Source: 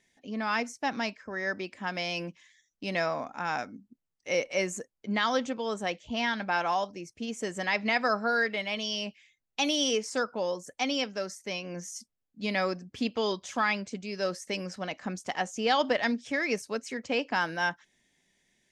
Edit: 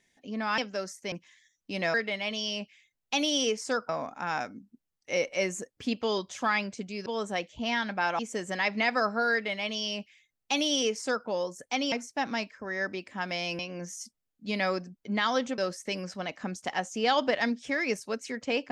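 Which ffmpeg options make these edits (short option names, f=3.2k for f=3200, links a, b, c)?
-filter_complex "[0:a]asplit=12[a][b][c][d][e][f][g][h][i][j][k][l];[a]atrim=end=0.582[m];[b]atrim=start=10.998:end=11.542[n];[c]atrim=start=2.248:end=3.072[o];[d]atrim=start=8.398:end=10.352[p];[e]atrim=start=3.068:end=4.952[q];[f]atrim=start=12.908:end=14.202[r];[g]atrim=start=5.568:end=6.702[s];[h]atrim=start=7.268:end=11.002[t];[i]atrim=start=0.578:end=2.252[u];[j]atrim=start=11.538:end=12.912[v];[k]atrim=start=4.948:end=5.572[w];[l]atrim=start=14.198[x];[m][n]acrossfade=d=0.004:c1=hsin:c2=hsin[y];[y][o]acrossfade=d=0.004:c1=hsin:c2=hsin[z];[z][p]acrossfade=d=0.004:c1=hsin:c2=hsin[aa];[aa][q]acrossfade=d=0.004:c1=hsin:c2=hsin[ab];[ab][r]acrossfade=d=0.004:c1=hsin:c2=hsin[ac];[ac][s]acrossfade=d=0.004:c1=hsin:c2=hsin[ad];[ad][t]acrossfade=d=0.004:c1=hsin:c2=hsin[ae];[ae][u]acrossfade=d=0.004:c1=hsin:c2=hsin[af];[af][v]acrossfade=d=0.004:c1=hsin:c2=hsin[ag];[ag][w]acrossfade=d=0.004:c1=hsin:c2=hsin[ah];[ah][x]acrossfade=d=0.004:c1=hsin:c2=hsin"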